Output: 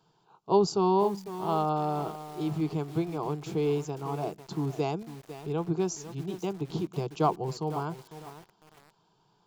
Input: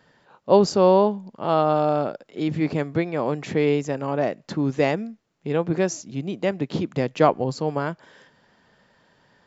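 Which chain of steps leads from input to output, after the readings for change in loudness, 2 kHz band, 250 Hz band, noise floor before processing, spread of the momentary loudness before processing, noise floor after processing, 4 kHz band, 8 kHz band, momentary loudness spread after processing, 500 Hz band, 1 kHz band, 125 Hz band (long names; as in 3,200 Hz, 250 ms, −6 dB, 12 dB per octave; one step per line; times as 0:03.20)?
−7.5 dB, −15.0 dB, −7.0 dB, −64 dBFS, 12 LU, −69 dBFS, −7.0 dB, can't be measured, 12 LU, −9.0 dB, −5.5 dB, −5.0 dB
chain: phaser with its sweep stopped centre 370 Hz, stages 8
feedback echo at a low word length 501 ms, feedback 35%, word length 6 bits, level −12 dB
level −4.5 dB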